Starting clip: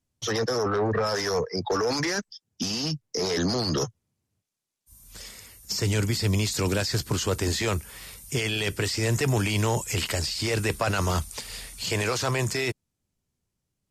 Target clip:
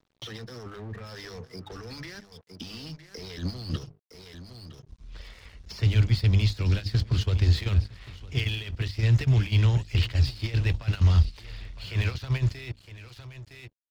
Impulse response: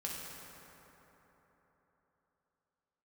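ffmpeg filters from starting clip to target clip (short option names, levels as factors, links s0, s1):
-filter_complex "[0:a]acrossover=split=230|2200[s0][s1][s2];[s1]acompressor=threshold=0.00794:ratio=6[s3];[s0][s3][s2]amix=inputs=3:normalize=0,asubboost=boost=5.5:cutoff=81,asplit=2[s4][s5];[s5]aecho=0:1:961:0.211[s6];[s4][s6]amix=inputs=2:normalize=0,adynamicequalizer=threshold=0.00562:dfrequency=2500:dqfactor=1.3:tfrequency=2500:tqfactor=1.3:attack=5:release=100:ratio=0.375:range=1.5:mode=cutabove:tftype=bell,lowpass=f=4000:w=0.5412,lowpass=f=4000:w=1.3066,bandreject=f=50:t=h:w=6,bandreject=f=100:t=h:w=6,bandreject=f=150:t=h:w=6,bandreject=f=200:t=h:w=6,acompressor=mode=upward:threshold=0.0501:ratio=2.5,aeval=exprs='sgn(val(0))*max(abs(val(0))-0.00562,0)':c=same,agate=range=0.316:threshold=0.0398:ratio=16:detection=peak,volume=1.5"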